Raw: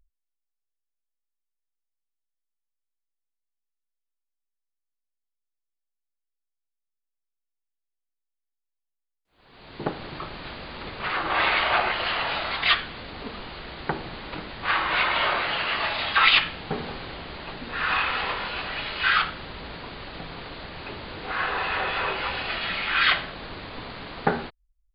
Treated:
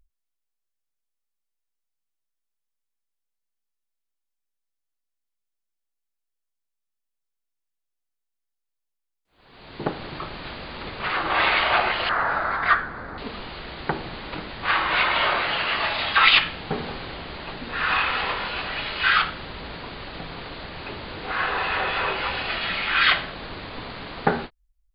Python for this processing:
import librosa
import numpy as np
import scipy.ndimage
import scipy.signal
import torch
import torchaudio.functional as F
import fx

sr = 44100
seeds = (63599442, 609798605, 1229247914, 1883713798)

y = fx.high_shelf_res(x, sr, hz=2100.0, db=-11.0, q=3.0, at=(12.09, 13.18))
y = fx.end_taper(y, sr, db_per_s=440.0)
y = F.gain(torch.from_numpy(y), 2.0).numpy()